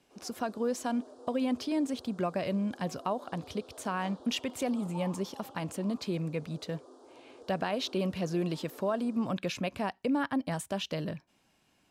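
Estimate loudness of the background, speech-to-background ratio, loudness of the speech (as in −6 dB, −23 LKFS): −52.5 LKFS, 19.0 dB, −33.5 LKFS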